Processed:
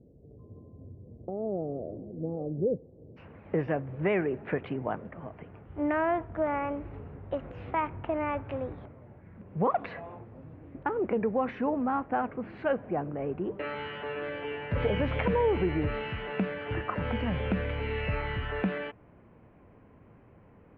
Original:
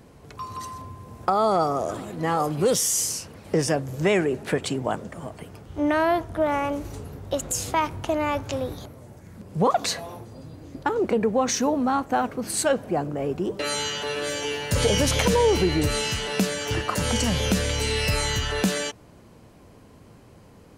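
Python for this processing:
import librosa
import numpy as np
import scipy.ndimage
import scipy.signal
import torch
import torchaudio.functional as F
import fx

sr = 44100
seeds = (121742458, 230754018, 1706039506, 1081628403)

y = fx.steep_lowpass(x, sr, hz=fx.steps((0.0, 560.0), (3.16, 2500.0)), slope=36)
y = y * 10.0 ** (-6.0 / 20.0)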